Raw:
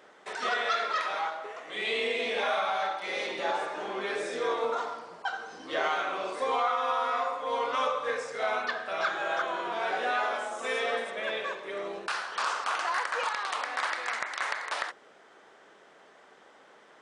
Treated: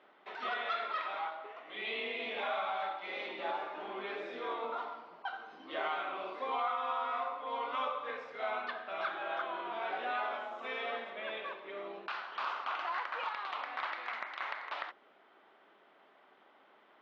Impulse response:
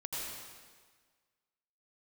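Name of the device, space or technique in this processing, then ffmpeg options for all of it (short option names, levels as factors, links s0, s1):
kitchen radio: -af "highpass=160,equalizer=f=160:t=q:w=4:g=-5,equalizer=f=480:t=q:w=4:g=-7,equalizer=f=1700:t=q:w=4:g=-5,lowpass=f=3500:w=0.5412,lowpass=f=3500:w=1.3066,volume=0.531"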